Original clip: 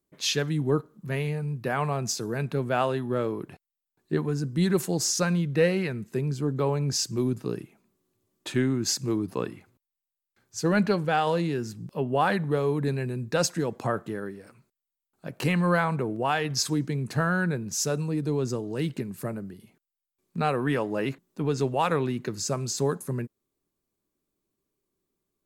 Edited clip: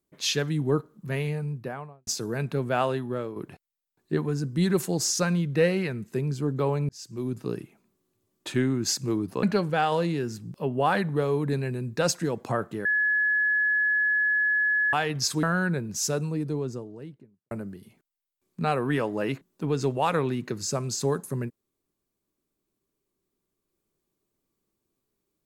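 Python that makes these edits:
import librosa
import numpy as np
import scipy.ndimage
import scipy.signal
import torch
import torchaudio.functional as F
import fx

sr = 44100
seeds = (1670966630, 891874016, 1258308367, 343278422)

y = fx.studio_fade_out(x, sr, start_s=1.36, length_s=0.71)
y = fx.studio_fade_out(y, sr, start_s=17.85, length_s=1.43)
y = fx.edit(y, sr, fx.fade_out_to(start_s=2.93, length_s=0.43, floor_db=-8.5),
    fx.fade_in_span(start_s=6.89, length_s=0.62),
    fx.cut(start_s=9.43, length_s=1.35),
    fx.bleep(start_s=14.2, length_s=2.08, hz=1700.0, db=-20.5),
    fx.cut(start_s=16.78, length_s=0.42), tone=tone)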